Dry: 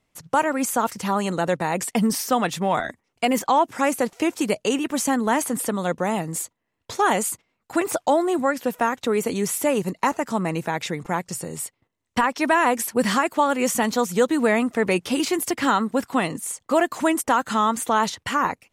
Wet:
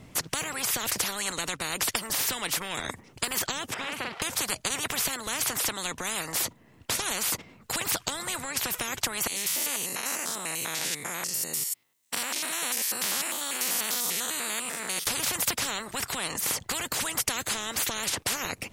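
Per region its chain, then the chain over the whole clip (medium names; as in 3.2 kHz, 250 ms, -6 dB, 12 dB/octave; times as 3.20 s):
3.74–4.22 s: high-pass 860 Hz 6 dB/octave + distance through air 450 m + doubling 45 ms -3 dB
9.27–15.07 s: spectrogram pixelated in time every 100 ms + differentiator
whole clip: peaking EQ 140 Hz +11 dB 2.6 oct; compression, threshold -20 dBFS; spectrum-flattening compressor 10:1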